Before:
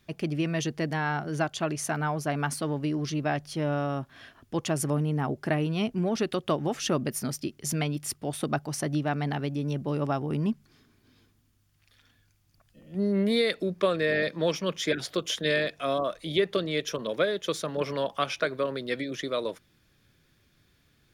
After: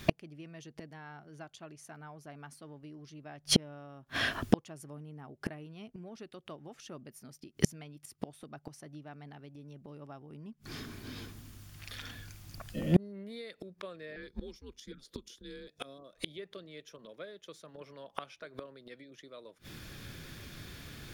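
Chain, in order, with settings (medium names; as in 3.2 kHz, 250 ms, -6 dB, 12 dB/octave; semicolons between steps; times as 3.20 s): 14.16–15.68 s: frequency shift -120 Hz; inverted gate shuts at -27 dBFS, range -38 dB; 14.28–16.13 s: time-frequency box 550–3300 Hz -8 dB; trim +18 dB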